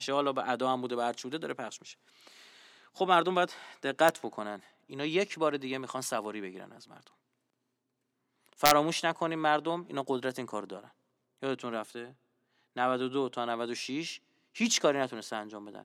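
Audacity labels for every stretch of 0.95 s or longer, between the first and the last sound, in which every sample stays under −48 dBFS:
7.070000	8.460000	silence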